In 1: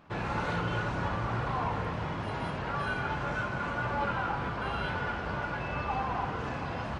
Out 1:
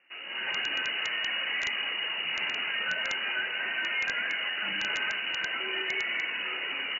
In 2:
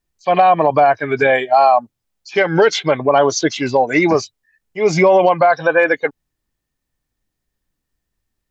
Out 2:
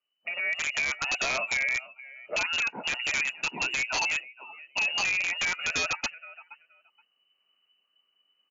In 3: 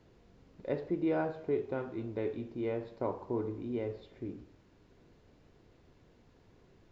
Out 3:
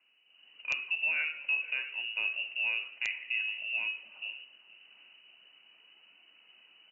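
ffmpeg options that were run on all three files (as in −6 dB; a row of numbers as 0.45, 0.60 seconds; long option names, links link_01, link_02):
-af "alimiter=limit=-6.5dB:level=0:latency=1:release=17,equalizer=frequency=2000:width=1.9:gain=-3,aphaser=in_gain=1:out_gain=1:delay=2.6:decay=0.25:speed=0.4:type=sinusoidal,acompressor=threshold=-28dB:ratio=6,aecho=1:1:474|948:0.112|0.018,dynaudnorm=framelen=250:gausssize=3:maxgain=12dB,asoftclip=type=hard:threshold=-11.5dB,lowpass=frequency=2600:width_type=q:width=0.5098,lowpass=frequency=2600:width_type=q:width=0.6013,lowpass=frequency=2600:width_type=q:width=0.9,lowpass=frequency=2600:width_type=q:width=2.563,afreqshift=-3000,highpass=frequency=170:width=0.5412,highpass=frequency=170:width=1.3066,tiltshelf=frequency=1200:gain=5,aeval=exprs='(mod(4.47*val(0)+1,2)-1)/4.47':channel_layout=same,volume=-7dB" -ar 16000 -c:a libmp3lame -b:a 160k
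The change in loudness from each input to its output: +3.5, −13.0, +4.5 LU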